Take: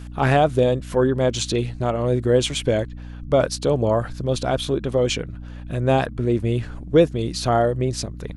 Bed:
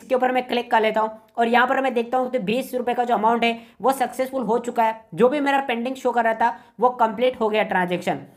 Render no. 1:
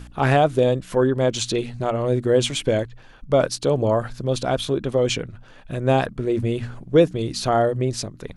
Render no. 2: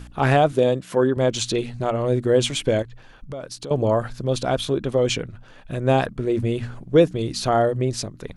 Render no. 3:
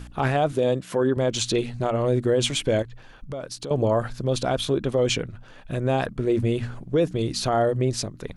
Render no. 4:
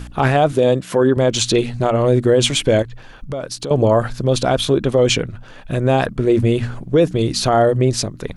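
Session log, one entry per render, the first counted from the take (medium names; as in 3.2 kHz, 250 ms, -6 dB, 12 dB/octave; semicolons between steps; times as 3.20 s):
de-hum 60 Hz, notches 5
0.52–1.17 s: high-pass 130 Hz; 2.82–3.71 s: compression 4:1, threshold -32 dBFS
peak limiter -12.5 dBFS, peak gain reduction 8 dB
trim +7.5 dB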